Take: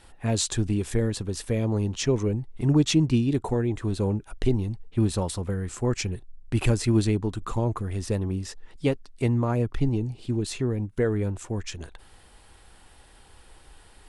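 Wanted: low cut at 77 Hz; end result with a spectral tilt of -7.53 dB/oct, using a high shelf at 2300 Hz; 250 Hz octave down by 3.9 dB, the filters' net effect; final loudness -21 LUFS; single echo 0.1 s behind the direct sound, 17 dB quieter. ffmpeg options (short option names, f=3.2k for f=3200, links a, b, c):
-af "highpass=77,equalizer=f=250:t=o:g=-5,highshelf=f=2.3k:g=-8,aecho=1:1:100:0.141,volume=8dB"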